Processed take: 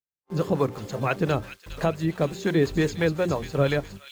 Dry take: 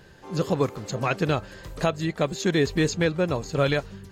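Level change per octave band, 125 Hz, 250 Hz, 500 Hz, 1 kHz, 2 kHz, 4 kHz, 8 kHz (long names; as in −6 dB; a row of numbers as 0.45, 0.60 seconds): +0.5, 0.0, 0.0, −1.0, −1.5, −4.5, −6.5 decibels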